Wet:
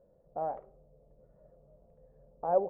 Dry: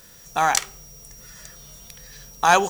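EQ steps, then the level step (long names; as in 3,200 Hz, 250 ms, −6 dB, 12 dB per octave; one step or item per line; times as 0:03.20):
transistor ladder low-pass 620 Hz, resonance 75%
−2.5 dB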